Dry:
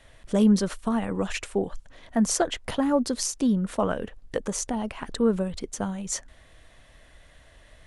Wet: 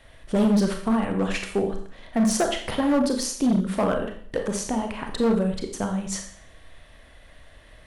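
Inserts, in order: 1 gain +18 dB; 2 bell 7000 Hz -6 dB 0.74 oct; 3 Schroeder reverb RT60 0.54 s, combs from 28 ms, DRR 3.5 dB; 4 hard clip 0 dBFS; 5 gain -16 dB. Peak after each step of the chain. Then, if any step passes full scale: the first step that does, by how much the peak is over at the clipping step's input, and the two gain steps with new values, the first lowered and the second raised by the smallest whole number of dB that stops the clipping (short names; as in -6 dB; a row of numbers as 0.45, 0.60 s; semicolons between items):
+10.0, +8.5, +9.5, 0.0, -16.0 dBFS; step 1, 9.5 dB; step 1 +8 dB, step 5 -6 dB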